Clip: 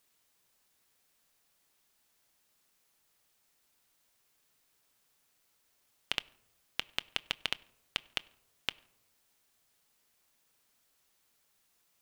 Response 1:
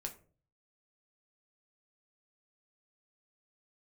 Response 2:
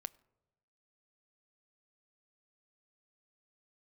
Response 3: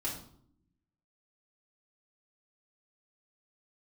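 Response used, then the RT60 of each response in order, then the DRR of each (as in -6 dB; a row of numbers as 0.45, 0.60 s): 2; 0.40, 1.0, 0.65 s; 2.5, 16.0, -7.0 dB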